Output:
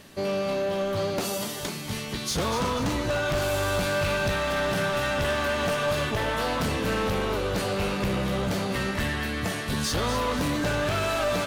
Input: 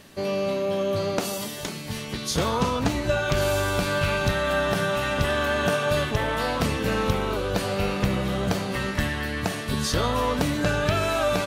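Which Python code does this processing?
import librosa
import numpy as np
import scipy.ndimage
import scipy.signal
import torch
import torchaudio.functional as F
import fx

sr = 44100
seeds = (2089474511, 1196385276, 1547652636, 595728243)

p1 = np.clip(x, -10.0 ** (-23.0 / 20.0), 10.0 ** (-23.0 / 20.0))
y = p1 + fx.echo_thinned(p1, sr, ms=244, feedback_pct=47, hz=420.0, wet_db=-9, dry=0)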